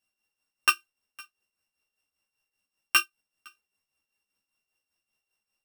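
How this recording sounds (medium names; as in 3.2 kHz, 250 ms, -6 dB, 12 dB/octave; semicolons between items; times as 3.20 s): a buzz of ramps at a fixed pitch in blocks of 16 samples; tremolo triangle 5.1 Hz, depth 70%; a shimmering, thickened sound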